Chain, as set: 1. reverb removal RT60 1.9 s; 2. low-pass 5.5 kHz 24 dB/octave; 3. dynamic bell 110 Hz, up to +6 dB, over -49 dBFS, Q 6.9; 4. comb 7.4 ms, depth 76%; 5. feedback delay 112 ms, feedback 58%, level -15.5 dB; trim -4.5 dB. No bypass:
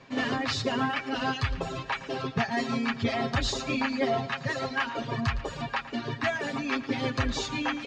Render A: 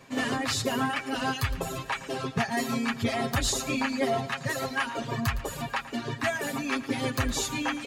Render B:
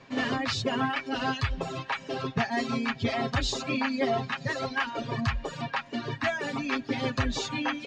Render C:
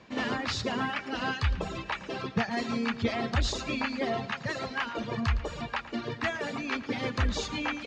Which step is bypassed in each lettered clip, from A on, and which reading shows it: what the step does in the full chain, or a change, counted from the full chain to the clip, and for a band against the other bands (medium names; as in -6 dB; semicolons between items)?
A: 2, 8 kHz band +9.0 dB; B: 5, echo-to-direct -13.5 dB to none; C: 4, 125 Hz band +1.5 dB